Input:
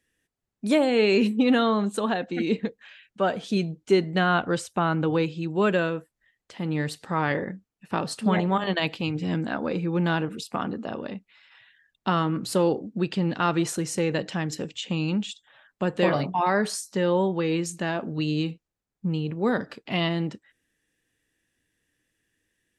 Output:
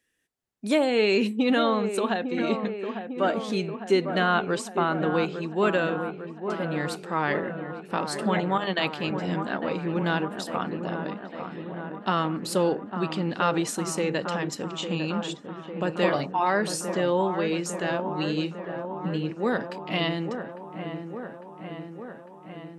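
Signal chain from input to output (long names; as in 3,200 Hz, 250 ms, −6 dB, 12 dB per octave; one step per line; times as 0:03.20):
low-shelf EQ 170 Hz −9.5 dB
on a send: delay with a low-pass on its return 852 ms, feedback 68%, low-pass 1,600 Hz, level −8 dB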